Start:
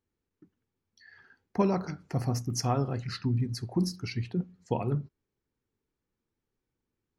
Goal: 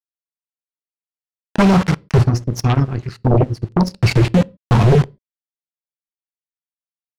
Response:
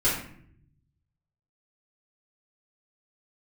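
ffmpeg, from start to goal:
-filter_complex "[0:a]asubboost=boost=7:cutoff=190,acrossover=split=790[a][b];[b]acontrast=40[c];[a][c]amix=inputs=2:normalize=0,aeval=exprs='val(0)*gte(abs(val(0)),0.0335)':c=same,adynamicsmooth=sensitivity=2.5:basefreq=5.4k,asplit=3[d][e][f];[d]afade=t=out:st=2.22:d=0.02[g];[e]aeval=exprs='0.355*(cos(1*acos(clip(val(0)/0.355,-1,1)))-cos(1*PI/2))+0.112*(cos(3*acos(clip(val(0)/0.355,-1,1)))-cos(3*PI/2))':c=same,afade=t=in:st=2.22:d=0.02,afade=t=out:st=3.94:d=0.02[h];[f]afade=t=in:st=3.94:d=0.02[i];[g][h][i]amix=inputs=3:normalize=0,aeval=exprs='0.355*sin(PI/2*2.82*val(0)/0.355)':c=same,asplit=2[j][k];[1:a]atrim=start_sample=2205,afade=t=out:st=0.32:d=0.01,atrim=end_sample=14553,asetrate=83790,aresample=44100[l];[k][l]afir=irnorm=-1:irlink=0,volume=-29.5dB[m];[j][m]amix=inputs=2:normalize=0,volume=2dB"

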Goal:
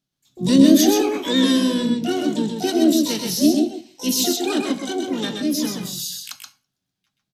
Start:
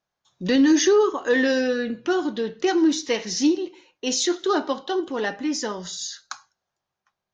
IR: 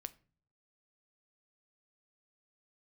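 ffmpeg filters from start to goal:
-filter_complex "[0:a]asplit=4[a][b][c][d];[b]asetrate=33038,aresample=44100,atempo=1.33484,volume=-12dB[e];[c]asetrate=55563,aresample=44100,atempo=0.793701,volume=-12dB[f];[d]asetrate=88200,aresample=44100,atempo=0.5,volume=-2dB[g];[a][e][f][g]amix=inputs=4:normalize=0,equalizer=f=125:t=o:w=1:g=9,equalizer=f=250:t=o:w=1:g=7,equalizer=f=500:t=o:w=1:g=-7,equalizer=f=1k:t=o:w=1:g=-10,equalizer=f=2k:t=o:w=1:g=-6,equalizer=f=4k:t=o:w=1:g=5,asplit=2[h][i];[1:a]atrim=start_sample=2205,adelay=128[j];[i][j]afir=irnorm=-1:irlink=0,volume=0dB[k];[h][k]amix=inputs=2:normalize=0,volume=-1dB"

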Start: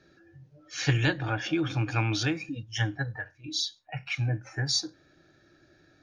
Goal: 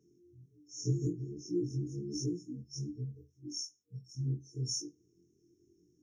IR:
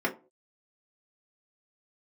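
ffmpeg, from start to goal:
-af "afftfilt=real='re':imag='-im':win_size=2048:overlap=0.75,afftfilt=real='re*(1-between(b*sr/4096,470,5300))':imag='im*(1-between(b*sr/4096,470,5300))':win_size=4096:overlap=0.75,highpass=f=140:p=1"

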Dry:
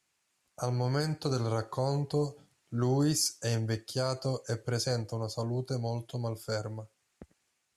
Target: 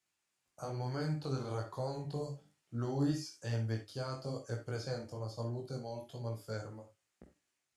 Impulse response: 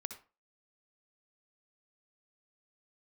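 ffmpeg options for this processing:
-filter_complex "[0:a]flanger=delay=17:depth=5.2:speed=1.1,acrossover=split=4200[a][b];[b]acompressor=threshold=-51dB:ratio=4:attack=1:release=60[c];[a][c]amix=inputs=2:normalize=0[d];[1:a]atrim=start_sample=2205,atrim=end_sample=6174,asetrate=61740,aresample=44100[e];[d][e]afir=irnorm=-1:irlink=0,volume=1dB"

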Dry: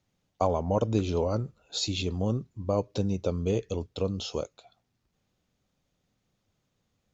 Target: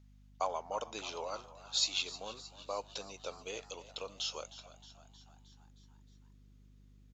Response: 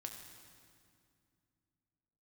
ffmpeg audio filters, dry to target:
-filter_complex "[0:a]highpass=1.1k,aeval=exprs='val(0)+0.00112*(sin(2*PI*50*n/s)+sin(2*PI*2*50*n/s)/2+sin(2*PI*3*50*n/s)/3+sin(2*PI*4*50*n/s)/4+sin(2*PI*5*50*n/s)/5)':c=same,asplit=2[a][b];[b]asplit=6[c][d][e][f][g][h];[c]adelay=312,afreqshift=72,volume=-16dB[i];[d]adelay=624,afreqshift=144,volume=-20.2dB[j];[e]adelay=936,afreqshift=216,volume=-24.3dB[k];[f]adelay=1248,afreqshift=288,volume=-28.5dB[l];[g]adelay=1560,afreqshift=360,volume=-32.6dB[m];[h]adelay=1872,afreqshift=432,volume=-36.8dB[n];[i][j][k][l][m][n]amix=inputs=6:normalize=0[o];[a][o]amix=inputs=2:normalize=0"

